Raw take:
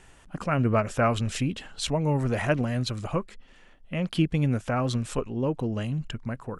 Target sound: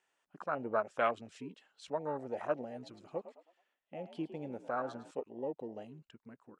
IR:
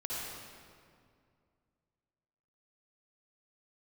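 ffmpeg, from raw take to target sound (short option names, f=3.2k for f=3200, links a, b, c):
-filter_complex "[0:a]afwtdn=0.0447,highpass=470,lowpass=7.9k,asettb=1/sr,asplit=3[a][b][c];[a]atrim=end=2.724[d];[b]atrim=start=2.72:end=5.11,asetpts=PTS-STARTPTS,afade=t=in:d=0.004:c=qsin,afade=t=out:st=2.386:d=0.004:c=qsin,asplit=5[e][f][g][h][i];[f]adelay=107,afreqshift=51,volume=-13dB[j];[g]adelay=214,afreqshift=102,volume=-21.6dB[k];[h]adelay=321,afreqshift=153,volume=-30.3dB[l];[i]adelay=428,afreqshift=204,volume=-38.9dB[m];[e][j][k][l][m]amix=inputs=5:normalize=0,atrim=end_sample=105399[n];[c]atrim=start=5.106[o];[d][n]acrossfade=d=0.004:c1=hsin:c2=qsin[p];[p][o]acrossfade=d=0.004:c1=qsin:c2=hsin,volume=-5.5dB"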